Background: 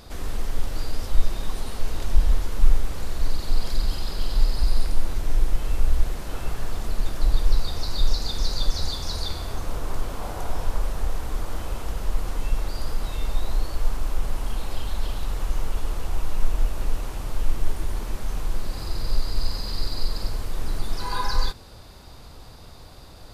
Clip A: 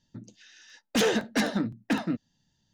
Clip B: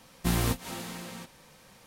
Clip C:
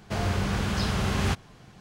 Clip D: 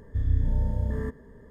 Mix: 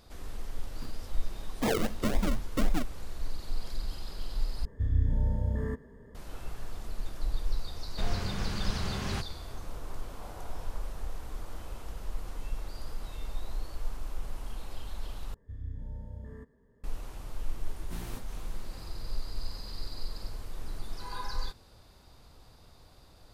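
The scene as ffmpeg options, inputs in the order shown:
-filter_complex "[4:a]asplit=2[s0][s1];[0:a]volume=0.266[s2];[1:a]acrusher=samples=42:mix=1:aa=0.000001:lfo=1:lforange=25.2:lforate=3.8[s3];[s2]asplit=3[s4][s5][s6];[s4]atrim=end=4.654[s7];[s0]atrim=end=1.5,asetpts=PTS-STARTPTS,volume=0.75[s8];[s5]atrim=start=6.146:end=15.344[s9];[s1]atrim=end=1.5,asetpts=PTS-STARTPTS,volume=0.168[s10];[s6]atrim=start=16.836[s11];[s3]atrim=end=2.73,asetpts=PTS-STARTPTS,volume=0.596,afade=t=in:d=0.004:c=hsin,afade=t=out:st=2.726:d=0.004:c=hsin,adelay=670[s12];[3:a]atrim=end=1.8,asetpts=PTS-STARTPTS,volume=0.376,afade=t=in:d=0.004:c=hsin,afade=t=out:st=1.796:d=0.004:c=hsin,adelay=7870[s13];[2:a]atrim=end=1.86,asetpts=PTS-STARTPTS,volume=0.15,afade=t=in:d=0.004:c=hsin,afade=t=out:st=1.856:d=0.004:c=hsin,adelay=17660[s14];[s7][s8]acrossfade=d=0.004:c1=hsin:c2=hsin[s15];[s15][s9]acrossfade=d=0.004:c1=hsin:c2=hsin[s16];[s16][s10]acrossfade=d=0.004:c1=hsin:c2=hsin[s17];[s17][s11]acrossfade=d=0.004:c1=hsin:c2=hsin[s18];[s18][s12][s13][s14]amix=inputs=4:normalize=0"

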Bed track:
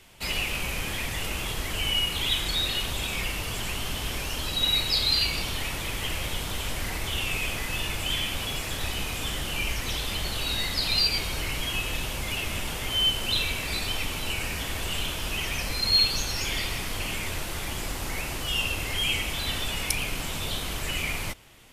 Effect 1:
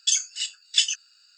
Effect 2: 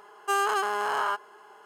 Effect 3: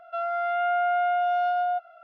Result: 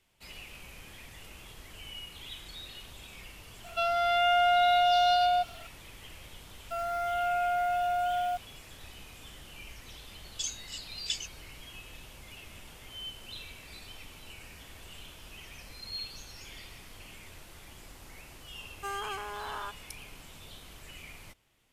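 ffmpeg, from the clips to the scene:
-filter_complex "[3:a]asplit=2[s0][s1];[0:a]volume=0.126[s2];[s0]aexciter=amount=7:drive=7.4:freq=2600[s3];[s1]aeval=exprs='val(0)*gte(abs(val(0)),0.0106)':c=same[s4];[s3]atrim=end=2.03,asetpts=PTS-STARTPTS,afade=t=in:d=0.004:c=hsin,afade=t=out:st=2.026:d=0.004:c=hsin,adelay=3640[s5];[s4]atrim=end=2.03,asetpts=PTS-STARTPTS,volume=0.562,afade=t=in:d=0.004:c=hsin,afade=t=out:st=2.026:d=0.004:c=hsin,adelay=290178S[s6];[1:a]atrim=end=1.37,asetpts=PTS-STARTPTS,volume=0.211,afade=t=in:d=0.004:c=hsin,afade=t=out:st=1.366:d=0.004:c=hsin,adelay=10320[s7];[2:a]atrim=end=1.65,asetpts=PTS-STARTPTS,volume=0.266,afade=t=in:d=0.004:c=hsin,afade=t=out:st=1.646:d=0.004:c=hsin,adelay=18550[s8];[s2][s5][s6][s7][s8]amix=inputs=5:normalize=0"

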